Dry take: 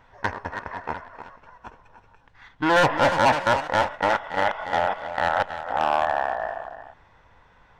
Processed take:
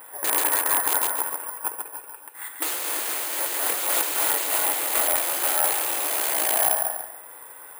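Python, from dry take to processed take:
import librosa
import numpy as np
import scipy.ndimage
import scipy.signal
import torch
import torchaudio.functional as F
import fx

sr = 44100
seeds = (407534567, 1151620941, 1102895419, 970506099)

y = (np.mod(10.0 ** (23.5 / 20.0) * x + 1.0, 2.0) - 1.0) / 10.0 ** (23.5 / 20.0)
y = fx.brickwall_highpass(y, sr, low_hz=270.0)
y = fx.echo_feedback(y, sr, ms=139, feedback_pct=33, wet_db=-5.5)
y = fx.over_compress(y, sr, threshold_db=-33.0, ratio=-1.0)
y = fx.high_shelf(y, sr, hz=5100.0, db=-5.5)
y = (np.kron(scipy.signal.resample_poly(y, 1, 4), np.eye(4)[0]) * 4)[:len(y)]
y = y * librosa.db_to_amplitude(4.5)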